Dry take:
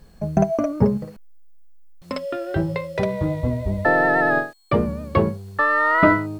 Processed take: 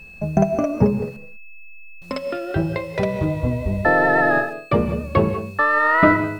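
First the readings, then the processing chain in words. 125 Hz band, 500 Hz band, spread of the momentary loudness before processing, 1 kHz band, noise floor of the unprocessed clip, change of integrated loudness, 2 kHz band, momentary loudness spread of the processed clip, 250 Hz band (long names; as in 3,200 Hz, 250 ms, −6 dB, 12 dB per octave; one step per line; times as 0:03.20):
+1.5 dB, +1.5 dB, 11 LU, +1.0 dB, −49 dBFS, +1.5 dB, +1.5 dB, 11 LU, +1.5 dB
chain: steady tone 2,600 Hz −41 dBFS
reverb whose tail is shaped and stops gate 220 ms rising, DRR 10.5 dB
level +1 dB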